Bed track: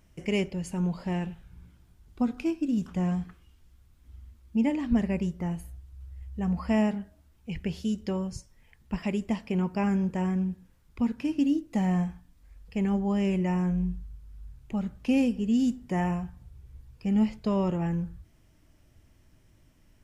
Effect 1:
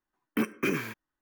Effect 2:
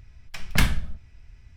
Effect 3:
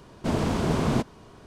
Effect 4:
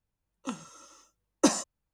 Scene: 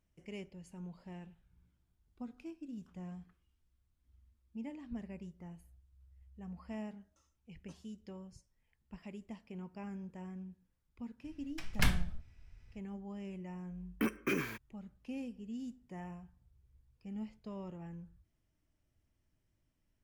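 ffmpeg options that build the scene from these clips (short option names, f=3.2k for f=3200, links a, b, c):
-filter_complex "[0:a]volume=-18.5dB[a];[4:a]aeval=exprs='val(0)*pow(10,-34*if(lt(mod(1.1*n/s,1),2*abs(1.1)/1000),1-mod(1.1*n/s,1)/(2*abs(1.1)/1000),(mod(1.1*n/s,1)-2*abs(1.1)/1000)/(1-2*abs(1.1)/1000))/20)':c=same,atrim=end=1.93,asetpts=PTS-STARTPTS,volume=-16.5dB,afade=t=in:d=0.004:c=hsin,afade=t=out:st=1.926:d=0.004:c=hsin,adelay=6250[b];[2:a]atrim=end=1.56,asetpts=PTS-STARTPTS,volume=-9dB,afade=t=in:d=0.004:c=hsin,afade=t=out:st=1.556:d=0.004:c=hsin,adelay=11240[c];[1:a]atrim=end=1.21,asetpts=PTS-STARTPTS,volume=-5.5dB,afade=t=in:d=0.004:c=hsin,afade=t=out:st=1.206:d=0.004:c=hsin,adelay=601524S[d];[a][b][c][d]amix=inputs=4:normalize=0"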